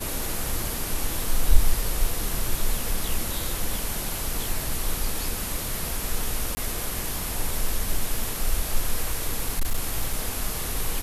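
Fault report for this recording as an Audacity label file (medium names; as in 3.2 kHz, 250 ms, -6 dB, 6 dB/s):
6.550000	6.570000	dropout 20 ms
9.110000	10.190000	clipped -18 dBFS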